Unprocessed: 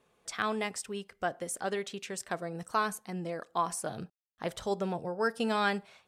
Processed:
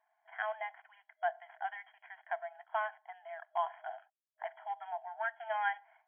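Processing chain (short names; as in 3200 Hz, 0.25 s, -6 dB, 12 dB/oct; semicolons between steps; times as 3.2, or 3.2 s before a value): median filter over 15 samples; fixed phaser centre 1800 Hz, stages 8; FFT band-pass 630–3300 Hz; gain +1 dB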